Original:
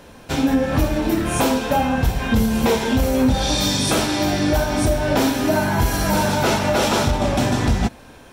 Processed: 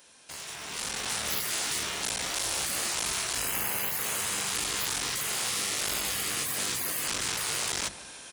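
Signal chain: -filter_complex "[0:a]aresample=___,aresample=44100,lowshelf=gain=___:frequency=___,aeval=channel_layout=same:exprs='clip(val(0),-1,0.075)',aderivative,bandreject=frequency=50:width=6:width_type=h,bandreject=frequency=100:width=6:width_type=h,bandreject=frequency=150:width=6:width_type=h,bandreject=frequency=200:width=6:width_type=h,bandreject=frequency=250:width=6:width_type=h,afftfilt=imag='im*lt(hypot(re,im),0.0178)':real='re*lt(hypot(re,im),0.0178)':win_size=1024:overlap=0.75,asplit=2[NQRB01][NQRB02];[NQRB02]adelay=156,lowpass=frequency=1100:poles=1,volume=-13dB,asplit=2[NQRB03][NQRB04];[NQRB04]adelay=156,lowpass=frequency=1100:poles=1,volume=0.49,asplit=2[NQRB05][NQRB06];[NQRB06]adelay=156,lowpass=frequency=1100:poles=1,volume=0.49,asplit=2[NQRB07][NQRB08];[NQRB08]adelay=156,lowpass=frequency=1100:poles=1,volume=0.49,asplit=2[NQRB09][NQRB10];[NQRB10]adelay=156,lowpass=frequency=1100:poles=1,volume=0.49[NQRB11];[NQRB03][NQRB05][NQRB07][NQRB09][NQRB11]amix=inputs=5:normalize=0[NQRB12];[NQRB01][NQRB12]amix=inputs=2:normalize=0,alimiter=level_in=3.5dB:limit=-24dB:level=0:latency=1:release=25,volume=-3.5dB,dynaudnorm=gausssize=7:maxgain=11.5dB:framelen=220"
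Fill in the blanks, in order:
22050, 10.5, 240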